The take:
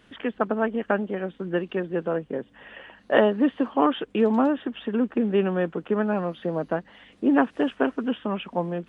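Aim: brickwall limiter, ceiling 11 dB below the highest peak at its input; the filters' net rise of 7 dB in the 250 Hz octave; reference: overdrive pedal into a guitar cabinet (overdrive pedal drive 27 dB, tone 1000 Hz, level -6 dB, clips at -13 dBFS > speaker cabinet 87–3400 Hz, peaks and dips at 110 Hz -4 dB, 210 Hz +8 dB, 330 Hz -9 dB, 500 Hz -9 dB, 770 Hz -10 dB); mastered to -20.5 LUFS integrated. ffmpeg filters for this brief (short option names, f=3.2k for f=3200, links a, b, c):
-filter_complex "[0:a]equalizer=f=250:t=o:g=6,alimiter=limit=-13dB:level=0:latency=1,asplit=2[a][b];[b]highpass=f=720:p=1,volume=27dB,asoftclip=type=tanh:threshold=-13dB[c];[a][c]amix=inputs=2:normalize=0,lowpass=f=1k:p=1,volume=-6dB,highpass=87,equalizer=f=110:t=q:w=4:g=-4,equalizer=f=210:t=q:w=4:g=8,equalizer=f=330:t=q:w=4:g=-9,equalizer=f=500:t=q:w=4:g=-9,equalizer=f=770:t=q:w=4:g=-10,lowpass=f=3.4k:w=0.5412,lowpass=f=3.4k:w=1.3066,volume=1dB"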